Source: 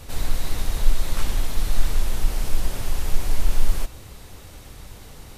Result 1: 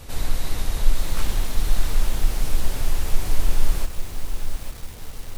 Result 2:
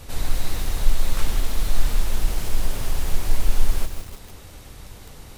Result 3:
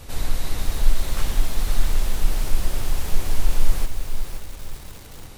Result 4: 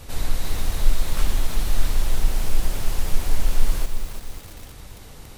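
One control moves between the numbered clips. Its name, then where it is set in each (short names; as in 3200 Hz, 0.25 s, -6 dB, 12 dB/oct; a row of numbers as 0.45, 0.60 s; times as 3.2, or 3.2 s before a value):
lo-fi delay, time: 0.849, 0.158, 0.519, 0.336 s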